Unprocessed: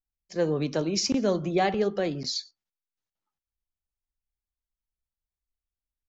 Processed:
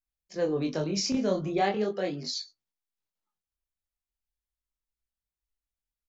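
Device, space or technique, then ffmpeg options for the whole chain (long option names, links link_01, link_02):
double-tracked vocal: -filter_complex "[0:a]asplit=2[link_01][link_02];[link_02]adelay=20,volume=-11.5dB[link_03];[link_01][link_03]amix=inputs=2:normalize=0,flanger=delay=19.5:depth=7.6:speed=0.4,asettb=1/sr,asplit=3[link_04][link_05][link_06];[link_04]atrim=end=1.614[link_07];[link_05]atrim=start=1.61:end=2.34,asetpts=PTS-STARTPTS,afade=type=in:duration=0.004:curve=qsin,afade=type=out:start_time=0.726:duration=0.004:curve=qsin,highpass=170[link_08];[link_06]atrim=start=2.336[link_09];[link_07][link_08]acrossfade=duration=0.004:curve1=hsin:curve2=qsin[link_10];[link_10][link_09]acrossfade=duration=0.004:curve1=qsin:curve2=hsin"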